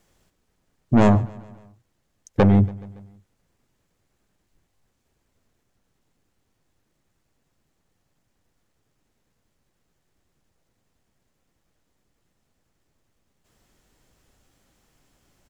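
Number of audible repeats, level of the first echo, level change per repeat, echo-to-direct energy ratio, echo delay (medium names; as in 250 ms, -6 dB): 3, -22.0 dB, -4.5 dB, -20.0 dB, 141 ms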